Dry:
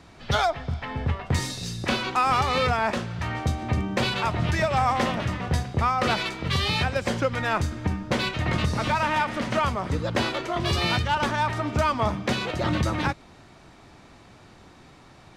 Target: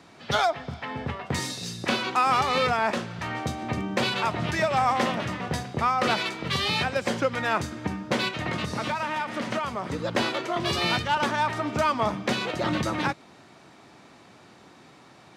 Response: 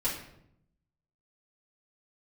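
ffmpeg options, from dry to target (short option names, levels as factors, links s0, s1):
-filter_complex "[0:a]highpass=160,asplit=3[s0][s1][s2];[s0]afade=t=out:st=8.28:d=0.02[s3];[s1]acompressor=threshold=0.0562:ratio=6,afade=t=in:st=8.28:d=0.02,afade=t=out:st=9.98:d=0.02[s4];[s2]afade=t=in:st=9.98:d=0.02[s5];[s3][s4][s5]amix=inputs=3:normalize=0"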